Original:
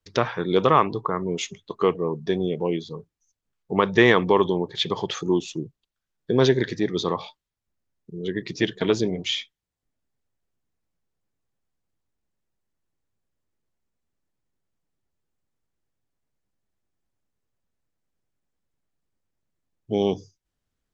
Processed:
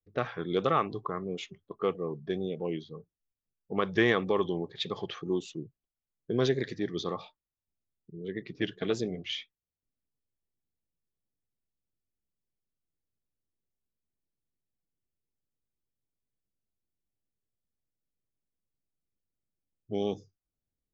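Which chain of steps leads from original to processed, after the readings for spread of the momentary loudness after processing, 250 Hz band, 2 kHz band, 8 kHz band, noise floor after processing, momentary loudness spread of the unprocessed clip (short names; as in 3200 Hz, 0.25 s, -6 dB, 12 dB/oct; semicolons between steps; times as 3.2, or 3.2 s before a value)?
14 LU, -8.5 dB, -8.5 dB, n/a, under -85 dBFS, 14 LU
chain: low-pass opened by the level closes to 560 Hz, open at -19 dBFS; Butterworth band-stop 940 Hz, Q 6.9; vibrato 1.7 Hz 68 cents; gain -8.5 dB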